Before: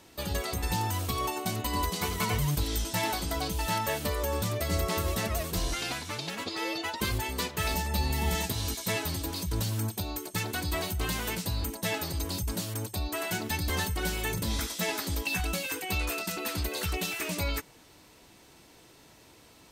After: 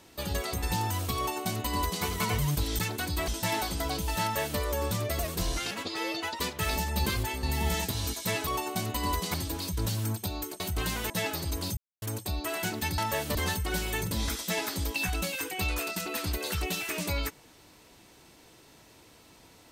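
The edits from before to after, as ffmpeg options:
-filter_complex "[0:a]asplit=16[a][b][c][d][e][f][g][h][i][j][k][l][m][n][o][p];[a]atrim=end=2.792[q];[b]atrim=start=10.338:end=10.832[r];[c]atrim=start=2.788:end=4.702[s];[d]atrim=start=5.348:end=5.872[t];[e]atrim=start=6.318:end=7.012[u];[f]atrim=start=7.378:end=8.042[v];[g]atrim=start=7.008:end=7.382[w];[h]atrim=start=8.038:end=9.082[x];[i]atrim=start=1.168:end=2.042[y];[j]atrim=start=9.078:end=10.342[z];[k]atrim=start=10.828:end=11.332[aa];[l]atrim=start=11.778:end=12.45,asetpts=PTS-STARTPTS,afade=t=out:st=0.668:d=0.004:c=hsin[ab];[m]atrim=start=12.45:end=12.7,asetpts=PTS-STARTPTS,volume=0[ac];[n]atrim=start=12.7:end=13.662,asetpts=PTS-STARTPTS,afade=t=in:d=0.004:c=hsin[ad];[o]atrim=start=3.728:end=4.102[ae];[p]atrim=start=13.658[af];[q][r]acrossfade=d=0.004:c1=hsin:c2=hsin[ag];[ag][s]acrossfade=d=0.004:c1=hsin:c2=hsin[ah];[ah][t]acrossfade=d=0.004:c1=hsin:c2=hsin[ai];[ai][u]acrossfade=d=0.004:c1=hsin:c2=hsin[aj];[aj][v]acrossfade=d=0.004:c1=hsin:c2=hsin[ak];[ak][w]acrossfade=d=0.004:c1=hsin:c2=hsin[al];[al][x]acrossfade=d=0.004:c1=hsin:c2=hsin[am];[am][y]acrossfade=d=0.004:c1=hsin:c2=hsin[an];[an][z]acrossfade=d=0.004:c1=hsin:c2=hsin[ao];[ao][aa]acrossfade=d=0.004:c1=hsin:c2=hsin[ap];[ab][ac][ad]concat=n=3:v=0:a=1[aq];[ap][aq]acrossfade=d=0.004:c1=hsin:c2=hsin[ar];[ar][ae]acrossfade=d=0.004:c1=hsin:c2=hsin[as];[as][af]acrossfade=d=0.004:c1=hsin:c2=hsin"

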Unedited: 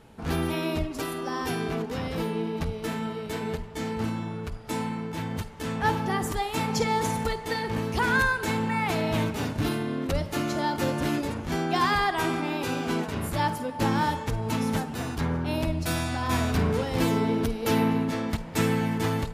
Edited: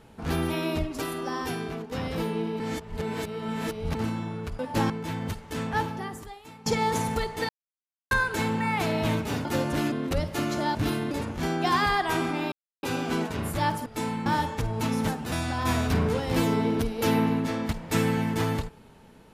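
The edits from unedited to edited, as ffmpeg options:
-filter_complex "[0:a]asplit=17[a][b][c][d][e][f][g][h][i][j][k][l][m][n][o][p][q];[a]atrim=end=1.92,asetpts=PTS-STARTPTS,afade=t=out:st=1.29:d=0.63:silence=0.398107[r];[b]atrim=start=1.92:end=2.602,asetpts=PTS-STARTPTS,afade=t=in:d=0.004:c=hsin:silence=0.398107[s];[c]atrim=start=2.598:end=3.952,asetpts=PTS-STARTPTS,areverse[t];[d]atrim=start=3.948:end=4.592[u];[e]atrim=start=13.638:end=13.952[v];[f]atrim=start=4.988:end=6.75,asetpts=PTS-STARTPTS,afade=t=out:st=0.722:d=1.04:c=qua:silence=0.0944061[w];[g]atrim=start=6.75:end=7.58,asetpts=PTS-STARTPTS,afade=t=in:d=0.004:c=hsin:silence=0.0944061,afade=t=out:st=0.826:d=0.004:c=hsin[x];[h]atrim=start=7.58:end=8.2,asetpts=PTS-STARTPTS,volume=0[y];[i]atrim=start=8.2:end=9.542,asetpts=PTS-STARTPTS,afade=t=in:d=0.004:c=hsin[z];[j]atrim=start=10.728:end=11.202[aa];[k]atrim=start=9.898:end=10.732[ab];[l]atrim=start=9.538:end=9.902[ac];[m]atrim=start=11.198:end=12.61,asetpts=PTS-STARTPTS,afade=t=out:st=1.408:d=0.004:c=hsin,apad=pad_dur=0.31[ad];[n]atrim=start=12.61:end=13.642,asetpts=PTS-STARTPTS,afade=t=in:d=0.004:c=hsin[ae];[o]atrim=start=4.588:end=4.992[af];[p]atrim=start=13.948:end=15.012[ag];[q]atrim=start=15.958[ah];[r][s]concat=n=2:v=0:a=1[ai];[ai][t]acrossfade=d=0.004:c1=hsin:c2=hsin[aj];[aj][u]acrossfade=d=0.004:c1=hsin:c2=hsin[ak];[ak][v]acrossfade=d=0.004:c1=hsin:c2=hsin[al];[w][x][y][z]concat=n=4:v=0:a=1[am];[al][am]acrossfade=d=0.004:c1=hsin:c2=hsin[an];[an][aa]acrossfade=d=0.004:c1=hsin:c2=hsin[ao];[ao][ab]acrossfade=d=0.004:c1=hsin:c2=hsin[ap];[ap][ac]acrossfade=d=0.004:c1=hsin:c2=hsin[aq];[ad][ae]concat=n=2:v=0:a=1[ar];[aq][ar]acrossfade=d=0.004:c1=hsin:c2=hsin[as];[as][af]acrossfade=d=0.004:c1=hsin:c2=hsin[at];[at][ag]acrossfade=d=0.004:c1=hsin:c2=hsin[au];[au][ah]acrossfade=d=0.004:c1=hsin:c2=hsin"

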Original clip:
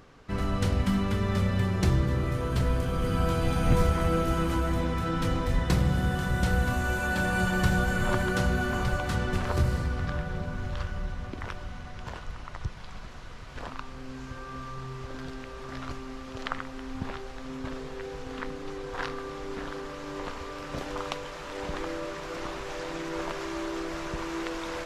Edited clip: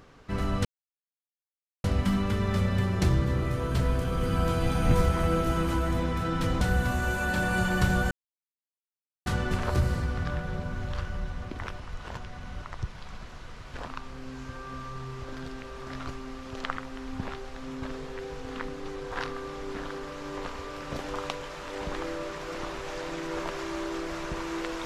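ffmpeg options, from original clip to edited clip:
-filter_complex "[0:a]asplit=7[a][b][c][d][e][f][g];[a]atrim=end=0.65,asetpts=PTS-STARTPTS,afade=t=out:st=0.646:d=0.004:c=hsin,apad=pad_dur=1.19[h];[b]atrim=start=0.65:end=5.422,asetpts=PTS-STARTPTS,afade=t=in:d=0.004:c=hsin[i];[c]atrim=start=6.428:end=7.93,asetpts=PTS-STARTPTS,afade=t=out:st=1.498:d=0.004:c=hsin[j];[d]atrim=start=7.93:end=9.08,asetpts=PTS-STARTPTS,volume=0[k];[e]atrim=start=9.08:end=11.622,asetpts=PTS-STARTPTS,afade=t=in:d=0.004:c=hsin[l];[f]atrim=start=11.618:end=12.442,asetpts=PTS-STARTPTS,areverse[m];[g]atrim=start=12.438[n];[h][i]concat=n=2:v=0:a=1[o];[j][k][l]concat=n=3:v=0:a=1[p];[o][p]acrossfade=d=0.004:c1=hsin:c2=hsin[q];[q][m]acrossfade=d=0.004:c1=hsin:c2=hsin[r];[r][n]acrossfade=d=0.004:c1=hsin:c2=hsin"

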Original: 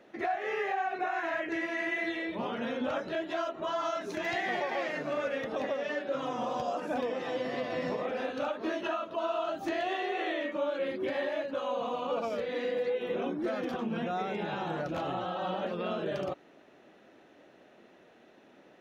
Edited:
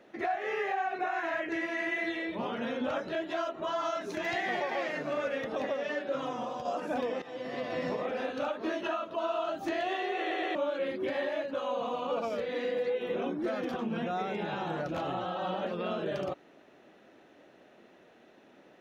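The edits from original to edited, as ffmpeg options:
-filter_complex "[0:a]asplit=6[a][b][c][d][e][f];[a]atrim=end=6.65,asetpts=PTS-STARTPTS,afade=t=out:st=6.2:d=0.45:silence=0.501187[g];[b]atrim=start=6.65:end=7.22,asetpts=PTS-STARTPTS,afade=t=in:d=0.004:c=hsin:silence=0.501187,afade=t=out:st=0.566:d=0.004:c=hsin:silence=0.199526[h];[c]atrim=start=7.22:end=10.312,asetpts=PTS-STARTPTS,afade=t=in:d=0.66:c=qsin:silence=0.199526[i];[d]atrim=start=10.188:end=10.312[j];[e]atrim=start=10.188:end=10.312[k];[f]atrim=start=10.548[l];[g][h][i]concat=n=3:v=0:a=1[m];[m][j]acrossfade=d=0.004:c1=hsin:c2=hsin[n];[n][k]acrossfade=d=0.004:c1=hsin:c2=hsin[o];[o][l]acrossfade=d=0.004:c1=hsin:c2=hsin"

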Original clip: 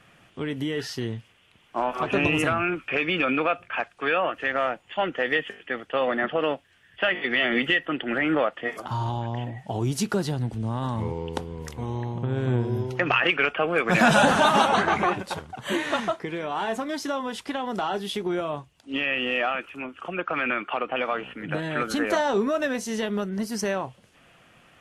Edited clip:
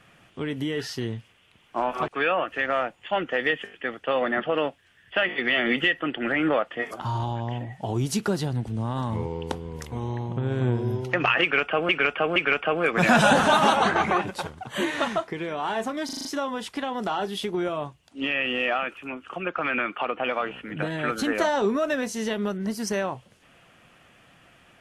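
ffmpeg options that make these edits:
-filter_complex "[0:a]asplit=9[a][b][c][d][e][f][g][h][i];[a]atrim=end=2.082[j];[b]atrim=start=3.938:end=13.752[k];[c]atrim=start=13.278:end=13.752[l];[d]atrim=start=13.278:end=17.012[m];[e]atrim=start=16.968:end=17.012[n];[f]atrim=start=16.968:end=17.012[o];[g]atrim=start=16.968:end=17.012[p];[h]atrim=start=16.968:end=17.012[q];[i]atrim=start=16.968[r];[j][k]acrossfade=d=0.004:c1=hsin:c2=hsin[s];[s][l]acrossfade=d=0.004:c1=hsin:c2=hsin[t];[t][m]acrossfade=d=0.004:c1=hsin:c2=hsin[u];[u][n]acrossfade=d=0.004:c1=hsin:c2=hsin[v];[v][o]acrossfade=d=0.004:c1=hsin:c2=hsin[w];[w][p]acrossfade=d=0.004:c1=hsin:c2=hsin[x];[x][q]acrossfade=d=0.004:c1=hsin:c2=hsin[y];[y][r]acrossfade=d=0.004:c1=hsin:c2=hsin"

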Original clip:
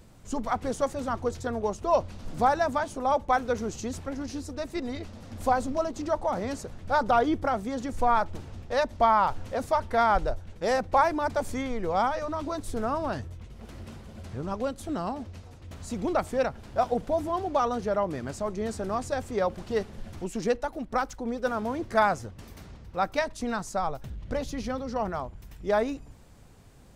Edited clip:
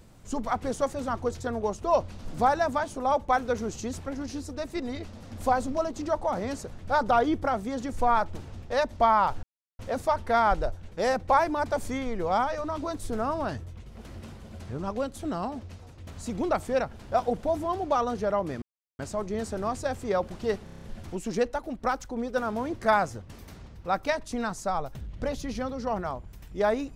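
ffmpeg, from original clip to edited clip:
-filter_complex "[0:a]asplit=9[a][b][c][d][e][f][g][h][i];[a]atrim=end=9.43,asetpts=PTS-STARTPTS,afade=t=out:st=9.426:d=0.004:c=hsin,apad=pad_dur=0.36[j];[b]atrim=start=9.43:end=18.26,asetpts=PTS-STARTPTS,afade=t=in:d=0.004:c=hsin,afade=t=out:st=8.826:d=0.004:c=hsin,apad=pad_dur=0.37[k];[c]atrim=start=18.26:end=19.942,asetpts=PTS-STARTPTS,afade=t=in:d=0.004:c=hsin[l];[d]atrim=start=19.908:end=19.942[m];[e]atrim=start=19.908:end=19.942[n];[f]atrim=start=19.908:end=19.942[o];[g]atrim=start=19.908:end=19.942[p];[h]atrim=start=19.908:end=19.942[q];[i]atrim=start=19.908[r];[j][k][l]concat=n=3:v=0:a=1[s];[s][m]acrossfade=d=0.004:c1=hsin:c2=hsin[t];[t][n]acrossfade=d=0.004:c1=hsin:c2=hsin[u];[u][o]acrossfade=d=0.004:c1=hsin:c2=hsin[v];[v][p]acrossfade=d=0.004:c1=hsin:c2=hsin[w];[w][q]acrossfade=d=0.004:c1=hsin:c2=hsin[x];[x][r]acrossfade=d=0.004:c1=hsin:c2=hsin"

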